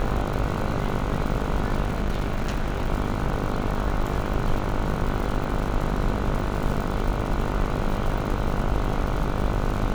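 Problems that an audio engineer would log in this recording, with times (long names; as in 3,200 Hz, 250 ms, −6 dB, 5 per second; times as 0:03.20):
mains buzz 50 Hz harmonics 30 −29 dBFS
surface crackle 130 per second −30 dBFS
0:01.84–0:02.90: clipping −20 dBFS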